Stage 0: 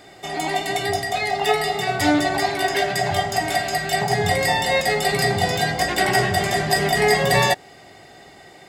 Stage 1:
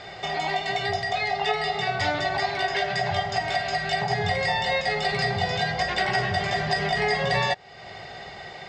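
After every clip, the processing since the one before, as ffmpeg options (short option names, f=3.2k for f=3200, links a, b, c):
-af "lowpass=f=5.4k:w=0.5412,lowpass=f=5.4k:w=1.3066,equalizer=f=290:t=o:w=0.57:g=-15,acompressor=threshold=-38dB:ratio=2,volume=7dB"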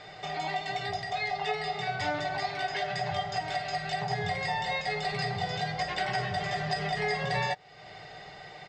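-af "aecho=1:1:6.6:0.44,volume=-7dB"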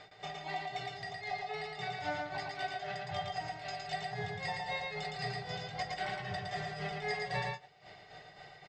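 -filter_complex "[0:a]tremolo=f=3.8:d=0.98,asplit=2[a][b];[b]aecho=0:1:113:0.708[c];[a][c]amix=inputs=2:normalize=0,volume=-5dB"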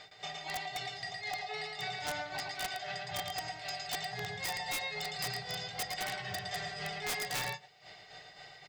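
-af "highshelf=f=2.4k:g=11,bandreject=f=50:t=h:w=6,bandreject=f=100:t=h:w=6,bandreject=f=150:t=h:w=6,bandreject=f=200:t=h:w=6,bandreject=f=250:t=h:w=6,bandreject=f=300:t=h:w=6,bandreject=f=350:t=h:w=6,bandreject=f=400:t=h:w=6,aeval=exprs='(mod(18.8*val(0)+1,2)-1)/18.8':c=same,volume=-2.5dB"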